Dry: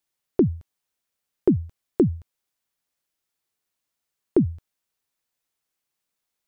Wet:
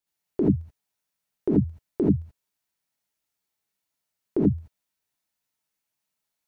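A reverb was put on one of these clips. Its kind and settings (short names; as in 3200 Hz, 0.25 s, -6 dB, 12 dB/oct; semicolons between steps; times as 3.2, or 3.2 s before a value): non-linear reverb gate 0.1 s rising, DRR -5.5 dB; gain -7.5 dB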